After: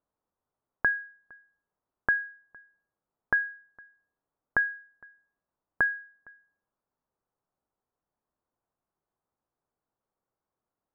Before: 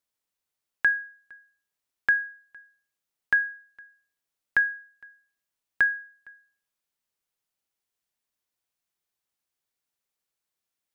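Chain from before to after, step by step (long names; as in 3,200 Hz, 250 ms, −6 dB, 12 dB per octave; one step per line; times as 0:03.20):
low-pass filter 1,200 Hz 24 dB per octave
level +8 dB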